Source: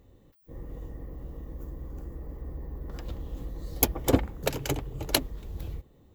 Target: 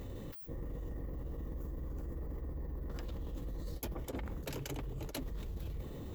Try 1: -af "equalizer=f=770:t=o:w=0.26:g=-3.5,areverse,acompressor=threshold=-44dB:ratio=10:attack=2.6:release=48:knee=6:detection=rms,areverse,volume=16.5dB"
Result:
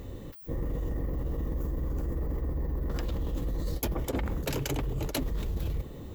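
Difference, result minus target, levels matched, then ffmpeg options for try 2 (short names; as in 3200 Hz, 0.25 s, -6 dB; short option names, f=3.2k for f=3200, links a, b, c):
compressor: peak gain reduction -10 dB
-af "equalizer=f=770:t=o:w=0.26:g=-3.5,areverse,acompressor=threshold=-55dB:ratio=10:attack=2.6:release=48:knee=6:detection=rms,areverse,volume=16.5dB"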